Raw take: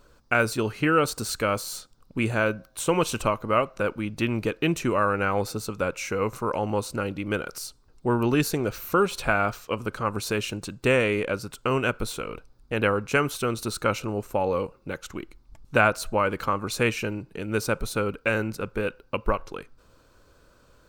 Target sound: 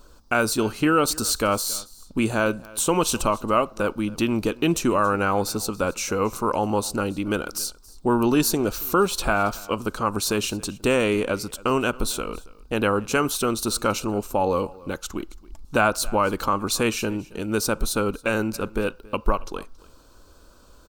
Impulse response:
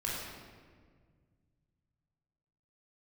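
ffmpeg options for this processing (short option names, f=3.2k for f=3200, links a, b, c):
-filter_complex "[0:a]equalizer=f=125:t=o:w=1:g=-11,equalizer=f=500:t=o:w=1:g=-6,equalizer=f=2k:t=o:w=1:g=-12,asplit=2[a][b];[b]alimiter=limit=-21dB:level=0:latency=1:release=80,volume=0dB[c];[a][c]amix=inputs=2:normalize=0,aecho=1:1:276:0.0794,volume=3dB"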